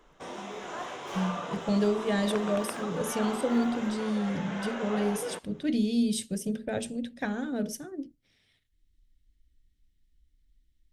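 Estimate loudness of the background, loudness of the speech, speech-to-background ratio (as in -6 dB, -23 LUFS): -37.5 LUFS, -30.5 LUFS, 7.0 dB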